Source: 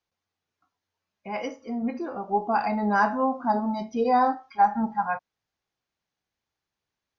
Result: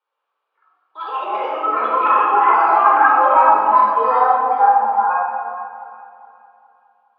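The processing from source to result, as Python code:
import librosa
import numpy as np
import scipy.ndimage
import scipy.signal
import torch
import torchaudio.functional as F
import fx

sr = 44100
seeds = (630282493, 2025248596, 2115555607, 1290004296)

p1 = fx.sine_speech(x, sr, at=(2.72, 3.16))
p2 = fx.rider(p1, sr, range_db=3, speed_s=0.5)
p3 = p1 + (p2 * librosa.db_to_amplitude(1.0))
p4 = fx.echo_pitch(p3, sr, ms=81, semitones=4, count=2, db_per_echo=-3.0)
p5 = p4 + fx.echo_alternate(p4, sr, ms=207, hz=870.0, feedback_pct=62, wet_db=-9, dry=0)
p6 = fx.room_shoebox(p5, sr, seeds[0], volume_m3=1900.0, walls='mixed', distance_m=4.6)
p7 = fx.resample_bad(p6, sr, factor=3, down='none', up='zero_stuff', at=(3.73, 4.49))
p8 = fx.cabinet(p7, sr, low_hz=480.0, low_slope=24, high_hz=3000.0, hz=(800.0, 1200.0, 2000.0), db=(3, 9, -10))
y = p8 * librosa.db_to_amplitude(-7.0)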